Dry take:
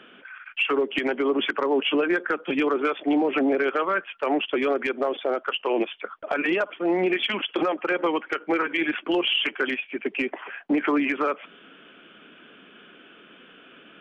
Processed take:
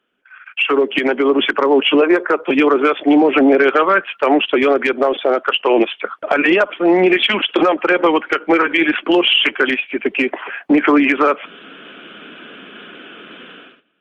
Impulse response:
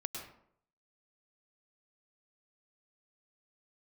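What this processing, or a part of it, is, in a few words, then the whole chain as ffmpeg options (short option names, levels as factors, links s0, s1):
video call: -filter_complex "[0:a]asettb=1/sr,asplit=3[s0][s1][s2];[s0]atrim=end=2.014[s3];[s1]atrim=start=2.01:end=2.51,asetpts=PTS-STARTPTS,afade=t=in:d=0.004:c=qsin,afade=t=out:st=0.496:d=0.004:c=qsin,equalizer=f=160:t=o:w=0.33:g=-8,equalizer=f=250:t=o:w=0.33:g=-10,equalizer=f=400:t=o:w=0.33:g=4,equalizer=f=630:t=o:w=0.33:g=5,equalizer=f=1000:t=o:w=0.33:g=7,equalizer=f=1600:t=o:w=0.33:g=-6,equalizer=f=3150:t=o:w=0.33:g=-8[s4];[s2]atrim=start=2.506[s5];[s3][s4]acrossfade=d=0.004:c1=hsin:c2=qsin[s6];[s6][s5]acrossfade=d=0.004:c1=qsin:c2=hsin,highpass=130,dynaudnorm=f=110:g=9:m=4.47,agate=range=0.112:threshold=0.01:ratio=16:detection=peak" -ar 48000 -c:a libopus -b:a 32k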